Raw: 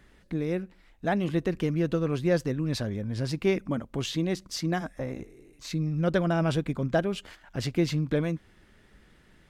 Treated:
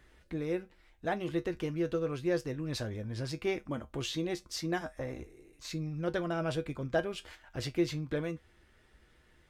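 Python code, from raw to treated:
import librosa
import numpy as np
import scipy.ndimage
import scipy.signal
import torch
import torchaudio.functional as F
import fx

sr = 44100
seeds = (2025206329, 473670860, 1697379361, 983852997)

p1 = fx.rider(x, sr, range_db=3, speed_s=0.5)
p2 = x + F.gain(torch.from_numpy(p1), 3.0).numpy()
p3 = fx.peak_eq(p2, sr, hz=200.0, db=-12.5, octaves=0.32)
p4 = fx.comb_fb(p3, sr, f0_hz=70.0, decay_s=0.16, harmonics='odd', damping=0.0, mix_pct=70)
y = F.gain(torch.from_numpy(p4), -6.5).numpy()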